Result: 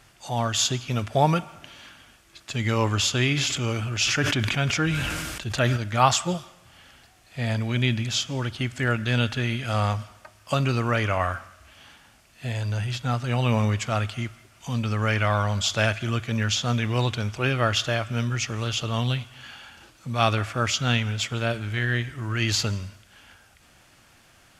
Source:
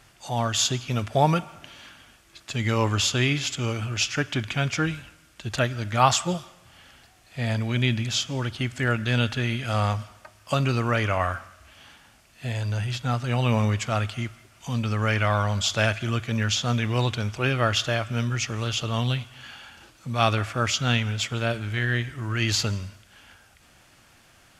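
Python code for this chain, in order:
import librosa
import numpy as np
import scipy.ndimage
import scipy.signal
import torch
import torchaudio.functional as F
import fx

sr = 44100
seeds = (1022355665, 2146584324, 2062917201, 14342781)

y = fx.sustainer(x, sr, db_per_s=25.0, at=(3.36, 5.76), fade=0.02)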